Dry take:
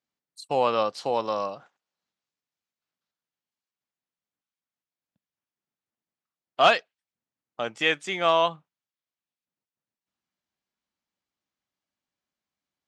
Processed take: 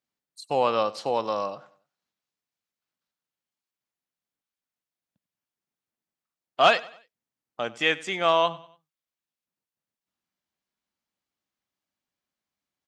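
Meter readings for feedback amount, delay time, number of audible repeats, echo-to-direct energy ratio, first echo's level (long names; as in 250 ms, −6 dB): 40%, 95 ms, 2, −19.5 dB, −20.0 dB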